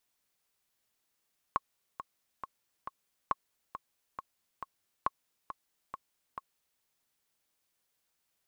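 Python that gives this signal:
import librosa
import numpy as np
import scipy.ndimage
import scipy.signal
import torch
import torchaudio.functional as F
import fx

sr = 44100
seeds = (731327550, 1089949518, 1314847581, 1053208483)

y = fx.click_track(sr, bpm=137, beats=4, bars=3, hz=1090.0, accent_db=11.5, level_db=-14.5)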